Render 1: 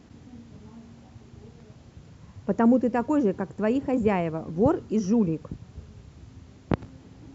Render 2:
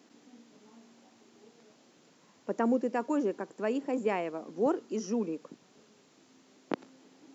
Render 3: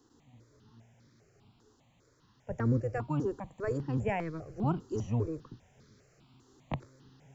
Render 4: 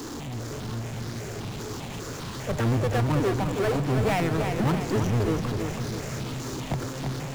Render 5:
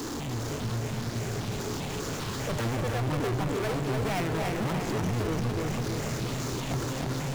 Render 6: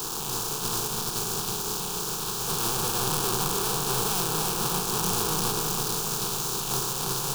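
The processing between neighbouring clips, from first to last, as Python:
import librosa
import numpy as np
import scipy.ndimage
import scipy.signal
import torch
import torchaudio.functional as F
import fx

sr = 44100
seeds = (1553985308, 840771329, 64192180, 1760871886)

y1 = scipy.signal.sosfilt(scipy.signal.butter(4, 250.0, 'highpass', fs=sr, output='sos'), x)
y1 = fx.high_shelf(y1, sr, hz=3800.0, db=7.0)
y1 = y1 * 10.0 ** (-5.5 / 20.0)
y2 = fx.octave_divider(y1, sr, octaves=1, level_db=3.0)
y2 = fx.rider(y2, sr, range_db=10, speed_s=2.0)
y2 = fx.phaser_held(y2, sr, hz=5.0, low_hz=620.0, high_hz=2800.0)
y3 = fx.power_curve(y2, sr, exponent=0.35)
y3 = fx.echo_feedback(y3, sr, ms=325, feedback_pct=55, wet_db=-6.0)
y3 = fx.end_taper(y3, sr, db_per_s=110.0)
y4 = 10.0 ** (-31.0 / 20.0) * np.tanh(y3 / 10.0 ** (-31.0 / 20.0))
y4 = y4 + 10.0 ** (-4.5 / 20.0) * np.pad(y4, (int(292 * sr / 1000.0), 0))[:len(y4)]
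y4 = y4 * 10.0 ** (2.5 / 20.0)
y5 = fx.spec_flatten(y4, sr, power=0.42)
y5 = fx.fixed_phaser(y5, sr, hz=400.0, stages=8)
y5 = fx.doubler(y5, sr, ms=38.0, db=-11)
y5 = y5 * 10.0 ** (4.0 / 20.0)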